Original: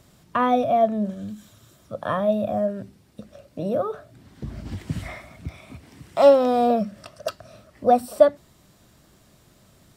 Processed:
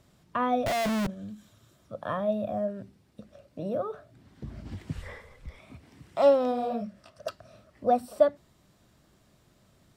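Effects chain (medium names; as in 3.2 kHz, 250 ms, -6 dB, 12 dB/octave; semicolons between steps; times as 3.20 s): 0.66–1.07 s: Schmitt trigger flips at -27.5 dBFS; 4.93–5.59 s: frequency shift -140 Hz; treble shelf 6.6 kHz -6 dB; 6.51–7.15 s: detune thickener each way 30 cents -> 47 cents; trim -6.5 dB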